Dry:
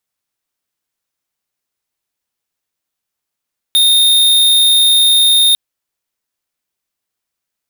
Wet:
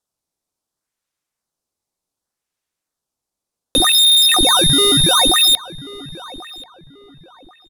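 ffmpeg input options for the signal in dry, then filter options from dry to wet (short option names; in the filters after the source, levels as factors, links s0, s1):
-f lavfi -i "aevalsrc='0.335*(2*lt(mod(3670*t,1),0.5)-1)':d=1.8:s=44100"
-filter_complex "[0:a]lowpass=11000,acrossover=split=230|1400|3500[s0][s1][s2][s3];[s2]acrusher=samples=15:mix=1:aa=0.000001:lfo=1:lforange=24:lforate=0.67[s4];[s0][s1][s4][s3]amix=inputs=4:normalize=0,asplit=2[s5][s6];[s6]adelay=1086,lowpass=f=2100:p=1,volume=0.15,asplit=2[s7][s8];[s8]adelay=1086,lowpass=f=2100:p=1,volume=0.32,asplit=2[s9][s10];[s10]adelay=1086,lowpass=f=2100:p=1,volume=0.32[s11];[s5][s7][s9][s11]amix=inputs=4:normalize=0"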